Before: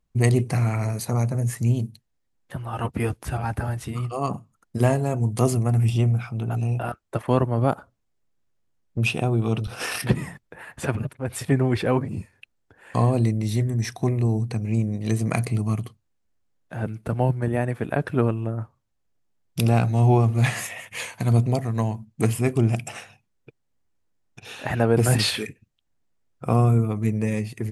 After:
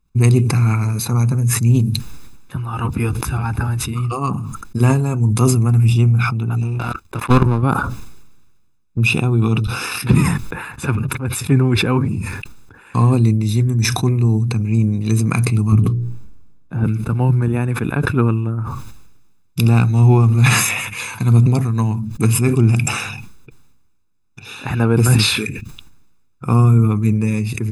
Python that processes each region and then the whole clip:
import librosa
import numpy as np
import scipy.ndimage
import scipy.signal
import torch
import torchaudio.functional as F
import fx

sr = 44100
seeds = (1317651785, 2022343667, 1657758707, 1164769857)

y = fx.chain(x, sr, fx.level_steps(step_db=19),
    fx.leveller(passes=3),
    fx.doppler_dist(depth_ms=0.2), at=(6.62, 7.63))
y = fx.chain(y, sr, fx.tilt_shelf(db=7.5, hz=840.0),
    fx.hum_notches(base_hz=60, count=9), at=(15.72, 16.84))
y = y + 0.73 * np.pad(y, (int(0.8 * sr / 1000.0), 0))[:len(y)]
y = fx.sustainer(y, sr, db_per_s=40.0)
y = y * librosa.db_to_amplitude(2.5)